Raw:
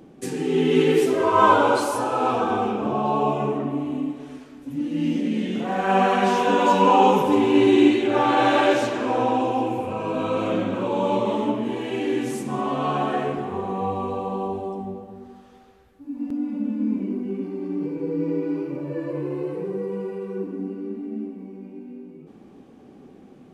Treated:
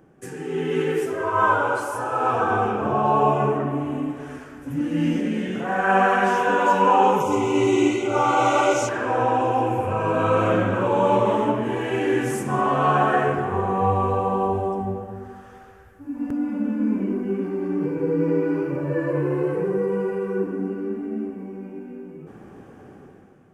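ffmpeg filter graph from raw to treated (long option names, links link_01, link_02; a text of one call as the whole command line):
ffmpeg -i in.wav -filter_complex "[0:a]asettb=1/sr,asplit=3[link_01][link_02][link_03];[link_01]atrim=end=7.204[link_04];[link_02]atrim=start=7.2:end=8.89,asetpts=PTS-STARTPTS,afade=type=in:duration=0.004:curve=qsin,afade=type=out:start_time=1.686:duration=0.004:curve=qsin,asuperstop=centerf=1700:order=12:qfactor=3.9,equalizer=frequency=6500:width=1.6:gain=13[link_05];[link_03]atrim=start=8.886[link_06];[link_04][link_05]acrossfade=duration=0.004:curve1=hsin:curve2=qsin[link_07];[link_07][link_06]acrossfade=duration=0.004:curve1=qsin:curve2=hsin,equalizer=frequency=100:width_type=o:width=0.67:gain=7,equalizer=frequency=250:width_type=o:width=0.67:gain=-7,equalizer=frequency=1600:width_type=o:width=0.67:gain=9,equalizer=frequency=4000:width_type=o:width=0.67:gain=-11,dynaudnorm=framelen=120:gausssize=11:maxgain=11.5dB,equalizer=frequency=2100:width_type=o:width=0.6:gain=-3,volume=-5dB" out.wav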